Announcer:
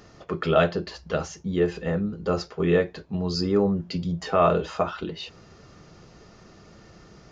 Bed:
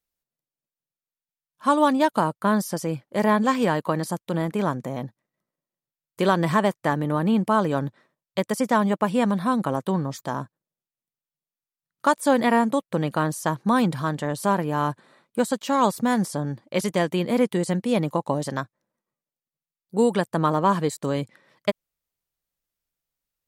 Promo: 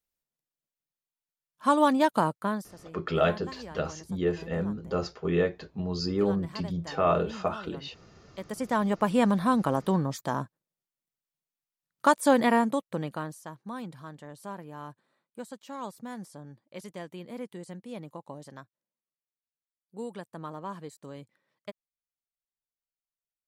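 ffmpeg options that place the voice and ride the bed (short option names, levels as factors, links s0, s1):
-filter_complex "[0:a]adelay=2650,volume=0.596[s0];[1:a]volume=7.08,afade=t=out:st=2.28:d=0.41:silence=0.11885,afade=t=in:st=8.28:d=0.92:silence=0.1,afade=t=out:st=12.26:d=1.18:silence=0.149624[s1];[s0][s1]amix=inputs=2:normalize=0"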